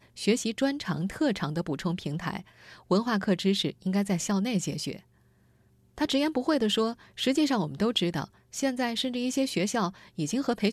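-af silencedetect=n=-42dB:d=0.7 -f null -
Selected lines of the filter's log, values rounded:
silence_start: 4.99
silence_end: 5.98 | silence_duration: 0.99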